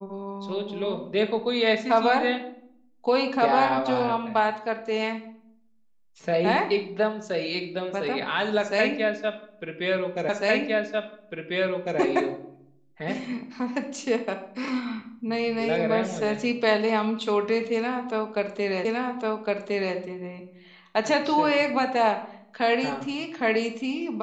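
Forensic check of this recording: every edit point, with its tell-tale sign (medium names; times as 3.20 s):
10.29 s: repeat of the last 1.7 s
18.85 s: repeat of the last 1.11 s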